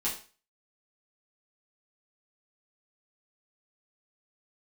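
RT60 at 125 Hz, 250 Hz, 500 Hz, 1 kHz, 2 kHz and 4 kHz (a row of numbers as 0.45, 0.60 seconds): 0.30, 0.35, 0.35, 0.40, 0.35, 0.35 seconds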